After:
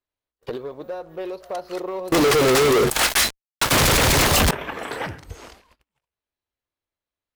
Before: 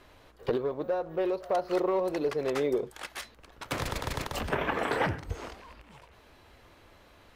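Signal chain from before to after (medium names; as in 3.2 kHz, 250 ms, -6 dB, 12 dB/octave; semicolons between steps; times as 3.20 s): gate -47 dBFS, range -35 dB; treble shelf 3.4 kHz +9.5 dB; 2.12–4.51 s: fuzz box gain 54 dB, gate -49 dBFS; trim -2 dB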